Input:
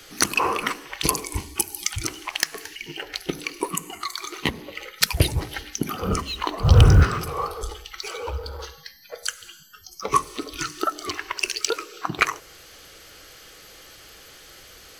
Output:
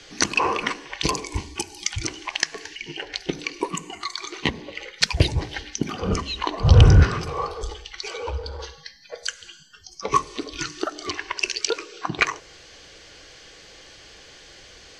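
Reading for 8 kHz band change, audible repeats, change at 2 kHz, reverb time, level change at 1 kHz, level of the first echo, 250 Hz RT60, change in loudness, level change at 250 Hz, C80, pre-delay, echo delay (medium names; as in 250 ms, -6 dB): -2.5 dB, no echo, +0.5 dB, no reverb, -0.5 dB, no echo, no reverb, +0.5 dB, +1.0 dB, no reverb, no reverb, no echo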